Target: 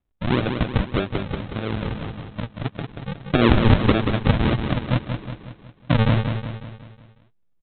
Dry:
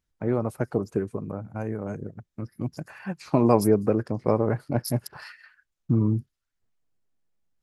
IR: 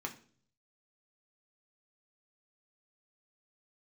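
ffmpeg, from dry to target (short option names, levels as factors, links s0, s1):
-af "aresample=8000,acrusher=samples=16:mix=1:aa=0.000001:lfo=1:lforange=16:lforate=1.7,aresample=44100,aecho=1:1:183|366|549|732|915|1098:0.473|0.237|0.118|0.0591|0.0296|0.0148,volume=1.5"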